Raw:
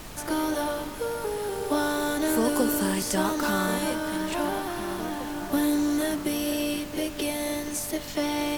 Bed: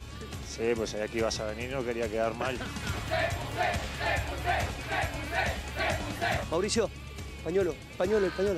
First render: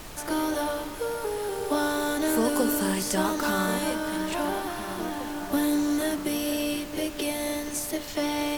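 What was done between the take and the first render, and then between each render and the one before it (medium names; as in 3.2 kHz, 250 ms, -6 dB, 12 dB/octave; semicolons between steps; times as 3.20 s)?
de-hum 50 Hz, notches 7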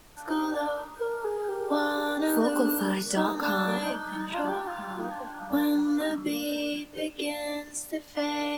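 noise print and reduce 13 dB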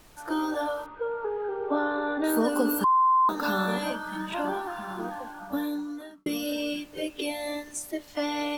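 0.86–2.24 s: low-pass 2.8 kHz 24 dB/octave; 2.84–3.29 s: bleep 1.04 kHz -17.5 dBFS; 5.16–6.26 s: fade out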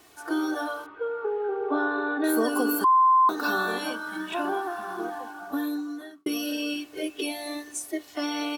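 Bessel high-pass 180 Hz, order 2; comb 2.7 ms, depth 62%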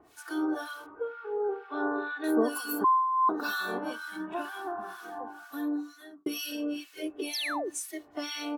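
harmonic tremolo 2.1 Hz, depth 100%, crossover 1.3 kHz; 7.33–7.70 s: painted sound fall 310–6400 Hz -33 dBFS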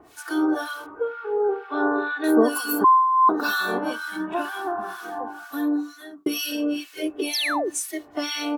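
trim +8 dB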